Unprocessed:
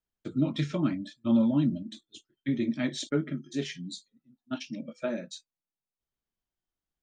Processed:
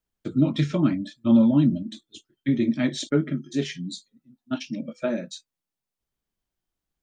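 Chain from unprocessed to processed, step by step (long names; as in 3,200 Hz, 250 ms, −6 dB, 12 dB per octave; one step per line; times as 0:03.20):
low-shelf EQ 480 Hz +3 dB
level +4 dB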